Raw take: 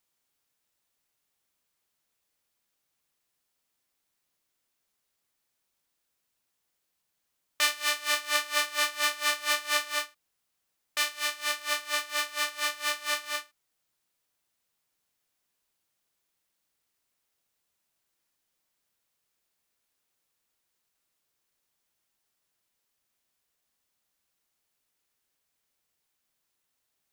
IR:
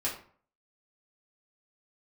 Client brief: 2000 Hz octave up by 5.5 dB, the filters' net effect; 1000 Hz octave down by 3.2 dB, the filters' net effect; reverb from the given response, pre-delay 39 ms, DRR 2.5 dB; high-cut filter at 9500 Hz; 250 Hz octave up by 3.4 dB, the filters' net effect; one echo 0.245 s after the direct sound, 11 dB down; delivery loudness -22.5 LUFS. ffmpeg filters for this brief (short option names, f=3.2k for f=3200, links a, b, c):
-filter_complex "[0:a]lowpass=9.5k,equalizer=f=250:t=o:g=4.5,equalizer=f=1k:t=o:g=-7.5,equalizer=f=2k:t=o:g=8.5,aecho=1:1:245:0.282,asplit=2[a][b];[1:a]atrim=start_sample=2205,adelay=39[c];[b][c]afir=irnorm=-1:irlink=0,volume=-8dB[d];[a][d]amix=inputs=2:normalize=0,volume=1dB"